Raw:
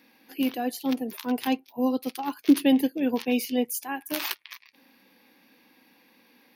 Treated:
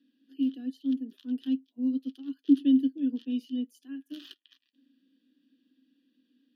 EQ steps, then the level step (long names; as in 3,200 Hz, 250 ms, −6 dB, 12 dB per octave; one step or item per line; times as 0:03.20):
formant filter i
Butterworth band-reject 2,200 Hz, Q 2
0.0 dB